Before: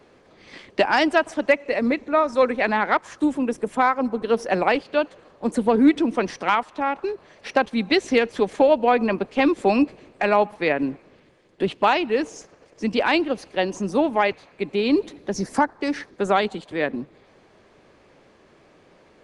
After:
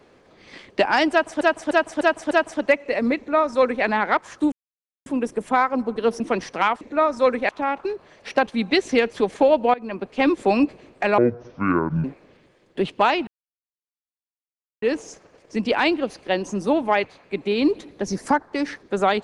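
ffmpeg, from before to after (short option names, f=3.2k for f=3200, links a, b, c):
-filter_complex "[0:a]asplit=13[a][b][c][d][e][f][g][h][i][j][k][l][m];[a]atrim=end=1.412[n];[b]atrim=start=1.108:end=1.412[o];[c]atrim=start=1.108:end=1.412[p];[d]atrim=start=1.108:end=1.412[q];[e]atrim=start=1.108:end=3.32,asetpts=PTS-STARTPTS,afade=t=out:st=2.208:d=0.004:c=hsin,apad=pad_dur=0.54[r];[f]atrim=start=3.32:end=4.462,asetpts=PTS-STARTPTS,afade=t=in:d=0.004:c=hsin[s];[g]atrim=start=6.068:end=6.682[t];[h]atrim=start=1.968:end=2.652[u];[i]atrim=start=6.678:end=8.93,asetpts=PTS-STARTPTS,afade=t=out:st=2.248:d=0.004:c=hsin:silence=0.0891251[v];[j]atrim=start=8.93:end=10.374,asetpts=PTS-STARTPTS,afade=t=in:d=0.51:silence=0.0891251[w];[k]atrim=start=10.37:end=10.87,asetpts=PTS-STARTPTS,asetrate=25578,aresample=44100,atrim=end_sample=38017,asetpts=PTS-STARTPTS[x];[l]atrim=start=10.866:end=12.1,asetpts=PTS-STARTPTS,afade=t=out:st=1.23:d=0.004:c=hsin,apad=pad_dur=1.55[y];[m]atrim=start=12.1,asetpts=PTS-STARTPTS,afade=t=in:d=0.004:c=hsin[z];[n][o]acrossfade=d=0.004:c1=hsin:c2=hsin[aa];[aa][p]acrossfade=d=0.004:c1=hsin:c2=hsin[ab];[ab][q]acrossfade=d=0.004:c1=hsin:c2=hsin[ac];[r][s]concat=n=2:v=0:a=1[ad];[ac][ad]acrossfade=d=0.004:c1=hsin:c2=hsin[ae];[ae][t]acrossfade=d=0.004:c1=hsin:c2=hsin[af];[af][u]acrossfade=d=0.004:c1=hsin:c2=hsin[ag];[v][w]concat=n=2:v=0:a=1[ah];[ag][ah]acrossfade=d=0.004:c1=hsin:c2=hsin[ai];[ai][x]acrossfade=d=0.004:c1=hsin:c2=hsin[aj];[y][z]concat=n=2:v=0:a=1[ak];[aj][ak]acrossfade=d=0.004:c1=hsin:c2=hsin"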